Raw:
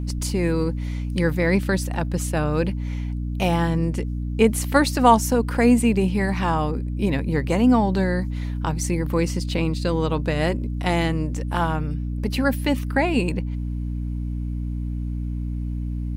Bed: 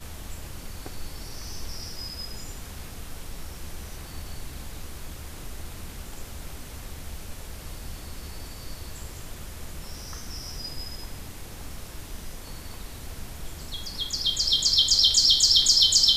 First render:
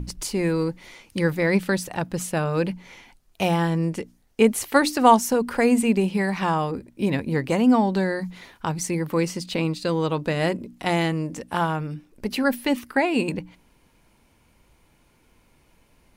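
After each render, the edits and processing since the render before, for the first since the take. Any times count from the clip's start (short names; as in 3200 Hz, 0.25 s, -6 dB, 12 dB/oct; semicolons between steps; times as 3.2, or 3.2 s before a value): notches 60/120/180/240/300 Hz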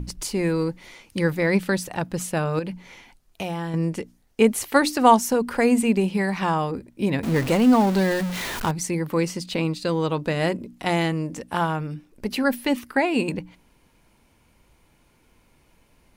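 2.59–3.74 compressor 3:1, threshold -27 dBFS; 7.23–8.71 zero-crossing step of -25 dBFS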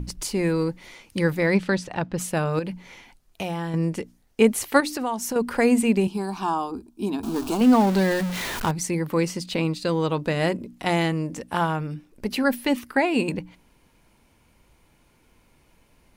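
1.53–2.17 LPF 7200 Hz -> 3900 Hz; 4.8–5.36 compressor 4:1, threshold -25 dBFS; 6.07–7.61 fixed phaser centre 530 Hz, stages 6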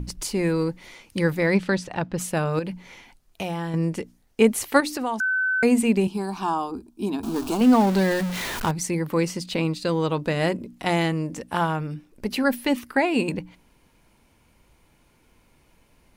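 5.2–5.63 bleep 1520 Hz -20 dBFS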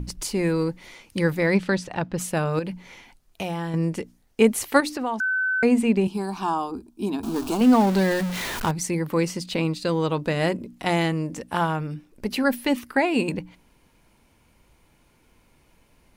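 4.89–6.06 high shelf 6100 Hz -11 dB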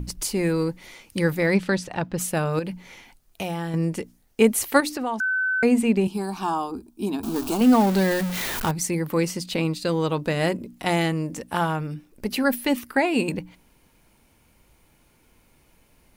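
high shelf 11000 Hz +9.5 dB; notch 1000 Hz, Q 28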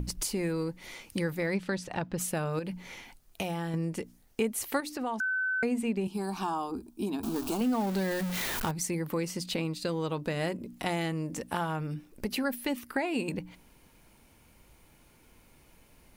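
compressor 2.5:1, threshold -32 dBFS, peak gain reduction 14 dB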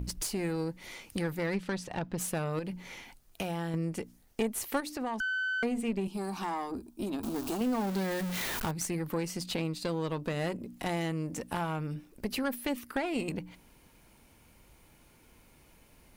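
one diode to ground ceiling -30 dBFS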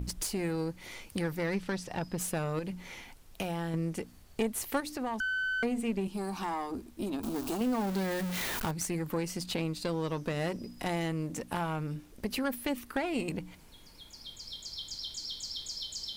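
add bed -21 dB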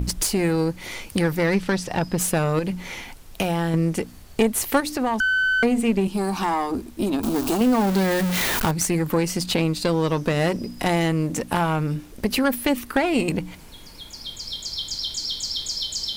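gain +11.5 dB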